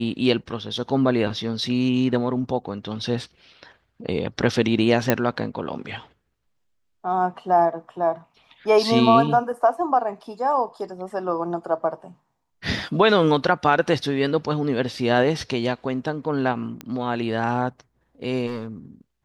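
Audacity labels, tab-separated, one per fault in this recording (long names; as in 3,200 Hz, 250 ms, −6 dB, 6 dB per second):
5.100000	5.100000	click −3 dBFS
16.810000	16.810000	click −17 dBFS
18.460000	18.680000	clipping −25.5 dBFS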